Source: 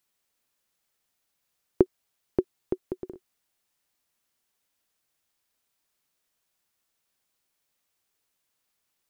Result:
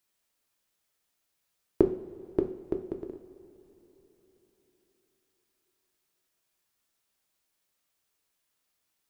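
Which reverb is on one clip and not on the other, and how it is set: two-slope reverb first 0.51 s, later 4.2 s, from -18 dB, DRR 4.5 dB; gain -2 dB

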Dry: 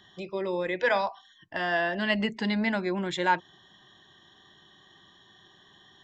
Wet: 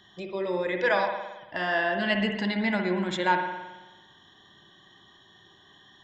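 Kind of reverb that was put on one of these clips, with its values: spring tank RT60 1.1 s, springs 55 ms, chirp 75 ms, DRR 4 dB

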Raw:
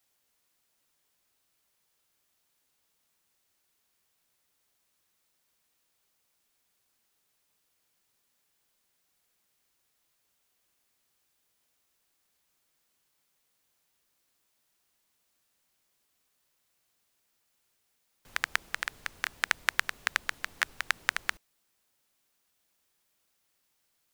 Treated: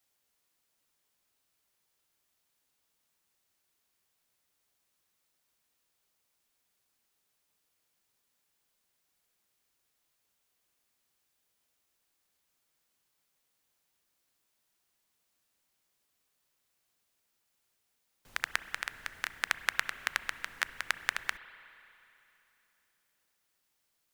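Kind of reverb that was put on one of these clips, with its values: spring tank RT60 3.1 s, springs 31/59 ms, chirp 55 ms, DRR 13.5 dB; gain -3 dB

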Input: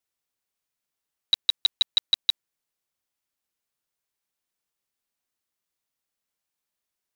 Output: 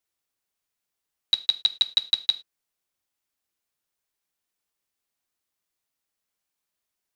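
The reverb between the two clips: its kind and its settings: non-linear reverb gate 0.13 s falling, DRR 11.5 dB; gain +1 dB

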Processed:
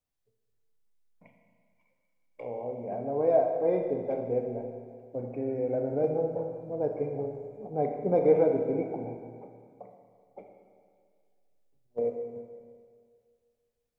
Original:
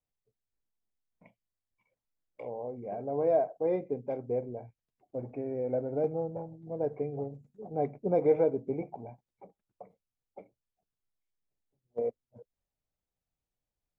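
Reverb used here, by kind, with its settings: Schroeder reverb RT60 2 s, combs from 26 ms, DRR 3 dB; gain +1.5 dB

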